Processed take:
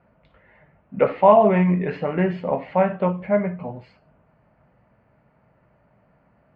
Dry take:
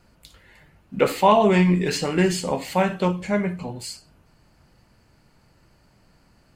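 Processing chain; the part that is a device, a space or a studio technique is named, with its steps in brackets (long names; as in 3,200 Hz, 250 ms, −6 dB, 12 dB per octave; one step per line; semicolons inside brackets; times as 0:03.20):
bass cabinet (loudspeaker in its box 69–2,100 Hz, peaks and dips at 81 Hz −9 dB, 330 Hz −7 dB, 620 Hz +7 dB, 1,600 Hz −3 dB)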